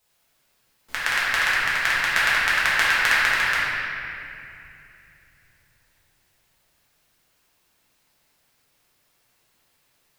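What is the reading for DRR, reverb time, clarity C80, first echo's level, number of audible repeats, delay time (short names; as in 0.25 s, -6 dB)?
-10.0 dB, 2.6 s, -2.5 dB, none, none, none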